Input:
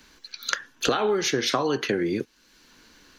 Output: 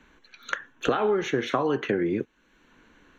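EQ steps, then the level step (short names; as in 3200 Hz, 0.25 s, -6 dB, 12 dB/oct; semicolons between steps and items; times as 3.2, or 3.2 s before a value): running mean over 9 samples; 0.0 dB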